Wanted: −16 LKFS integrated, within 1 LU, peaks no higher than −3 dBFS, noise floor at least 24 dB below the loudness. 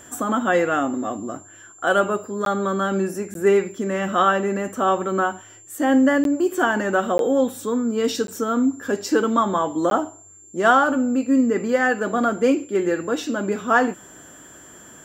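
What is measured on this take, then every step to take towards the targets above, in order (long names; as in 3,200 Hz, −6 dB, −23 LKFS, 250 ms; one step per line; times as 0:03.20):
number of dropouts 6; longest dropout 12 ms; interfering tone 7,300 Hz; level of the tone −45 dBFS; integrated loudness −21.0 LKFS; sample peak −4.0 dBFS; target loudness −16.0 LKFS
→ repair the gap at 0:02.45/0:03.34/0:06.24/0:07.18/0:08.27/0:09.90, 12 ms
notch filter 7,300 Hz, Q 30
level +5 dB
brickwall limiter −3 dBFS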